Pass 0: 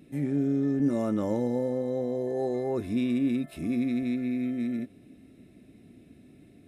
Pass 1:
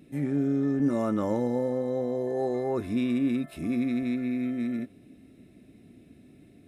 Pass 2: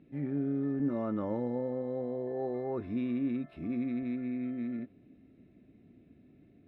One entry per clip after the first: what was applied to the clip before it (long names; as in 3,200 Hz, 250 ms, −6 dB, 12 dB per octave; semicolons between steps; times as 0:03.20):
dynamic equaliser 1,200 Hz, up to +6 dB, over −50 dBFS, Q 1.2
high-frequency loss of the air 350 metres; level −5.5 dB